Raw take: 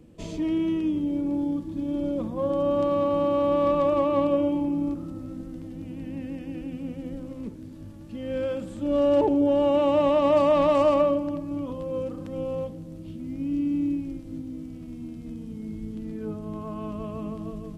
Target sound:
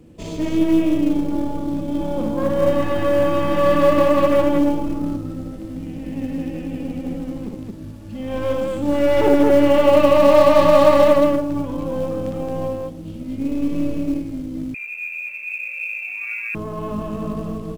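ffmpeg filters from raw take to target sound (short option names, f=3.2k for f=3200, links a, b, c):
-filter_complex "[0:a]aeval=exprs='0.282*(cos(1*acos(clip(val(0)/0.282,-1,1)))-cos(1*PI/2))+0.01*(cos(4*acos(clip(val(0)/0.282,-1,1)))-cos(4*PI/2))+0.0316*(cos(6*acos(clip(val(0)/0.282,-1,1)))-cos(6*PI/2))':c=same,aecho=1:1:58.31|221.6:0.631|0.794,asettb=1/sr,asplit=3[a][b][c];[a]atrim=end=14.744[d];[b]atrim=start=14.74:end=16.55,asetpts=PTS-STARTPTS,afade=t=in:d=0.004:c=qsin,afade=t=out:st=1.806:d=0.004:c=qsin,lowpass=f=2.3k:t=q:w=0.5098,lowpass=f=2.3k:t=q:w=0.6013,lowpass=f=2.3k:t=q:w=0.9,lowpass=f=2.3k:t=q:w=2.563,afreqshift=-2700[e];[c]atrim=start=16.546[f];[d][e]acrossfade=d=0.004:c1=hsin:c2=qsin[g];[g][f]acrossfade=d=0.004:c1=qsin:c2=hsin,asplit=2[h][i];[i]acrusher=bits=4:mode=log:mix=0:aa=0.000001,volume=-8.5dB[j];[h][j]amix=inputs=2:normalize=0,volume=1.5dB"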